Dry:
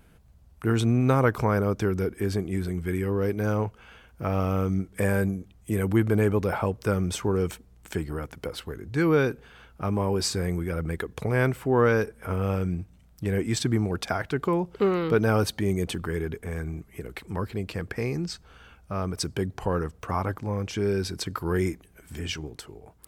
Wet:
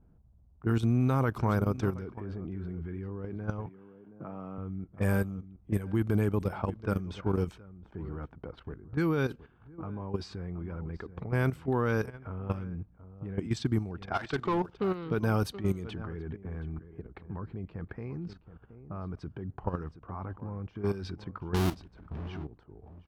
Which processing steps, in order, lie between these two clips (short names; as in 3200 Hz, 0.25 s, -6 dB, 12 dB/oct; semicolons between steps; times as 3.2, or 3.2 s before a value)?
21.54–22.29 half-waves squared off; on a send: echo 0.723 s -15 dB; 14.13–14.74 on the sum: overdrive pedal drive 16 dB, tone 4700 Hz, clips at -15 dBFS; level quantiser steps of 12 dB; 3.66–4.58 HPF 140 Hz 24 dB/oct; low-pass opened by the level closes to 730 Hz, open at -22.5 dBFS; graphic EQ 500/2000/8000 Hz -6/-6/-6 dB